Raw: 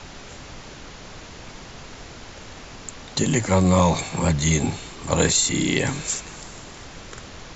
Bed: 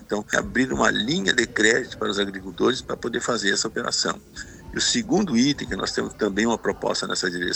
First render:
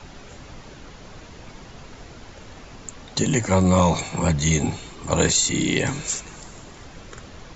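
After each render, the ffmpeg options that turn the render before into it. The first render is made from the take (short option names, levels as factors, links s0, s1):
-af "afftdn=nr=6:nf=-41"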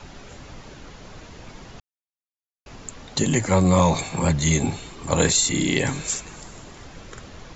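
-filter_complex "[0:a]asplit=3[s0][s1][s2];[s0]atrim=end=1.8,asetpts=PTS-STARTPTS,afade=t=out:st=1.796:d=0.004:c=hsin[s3];[s1]atrim=start=1.8:end=2.66,asetpts=PTS-STARTPTS,volume=0[s4];[s2]atrim=start=2.66,asetpts=PTS-STARTPTS,afade=t=in:d=0.004:c=hsin[s5];[s3][s4][s5]concat=n=3:v=0:a=1"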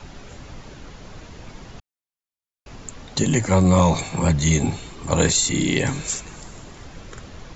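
-af "lowshelf=f=200:g=3.5"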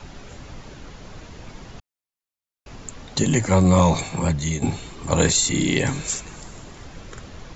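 -filter_complex "[0:a]asplit=2[s0][s1];[s0]atrim=end=4.62,asetpts=PTS-STARTPTS,afade=t=out:st=4.04:d=0.58:silence=0.334965[s2];[s1]atrim=start=4.62,asetpts=PTS-STARTPTS,afade=t=in:d=0.004:c=hsin:silence=0.334965[s3];[s2][s3]concat=n=2:v=0:a=1"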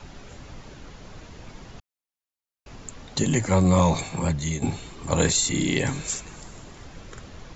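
-af "volume=0.708"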